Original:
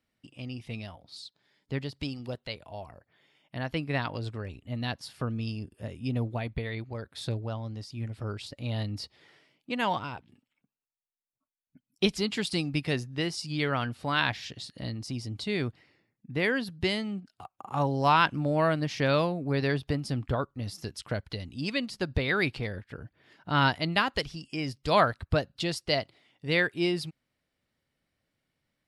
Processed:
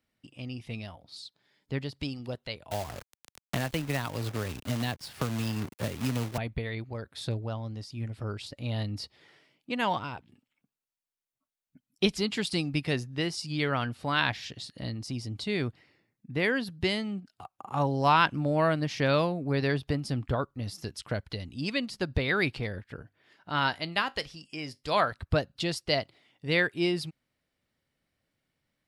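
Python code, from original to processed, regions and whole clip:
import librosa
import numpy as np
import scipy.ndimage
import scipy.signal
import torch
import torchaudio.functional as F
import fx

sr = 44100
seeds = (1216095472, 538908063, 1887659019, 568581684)

y = fx.chain(x, sr, fx.quant_companded(bits=4),
    fx.band_squash(depth_pct=100), at=(2.71, 6.38))
y = fx.chain(y, sr, fx.low_shelf(hz=320.0, db=-7.5),
    fx.comb_fb(f0_hz=50.0, decay_s=0.21, harmonics='all', damping=0.0, mix_pct=40), at=(23.02, 25.12))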